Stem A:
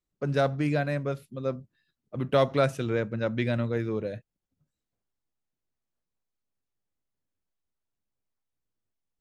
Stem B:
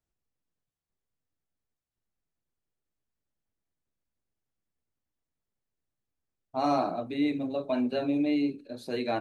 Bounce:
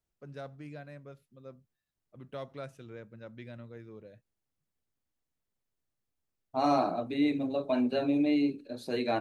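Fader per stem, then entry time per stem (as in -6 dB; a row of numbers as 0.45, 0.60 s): -18.5, 0.0 dB; 0.00, 0.00 s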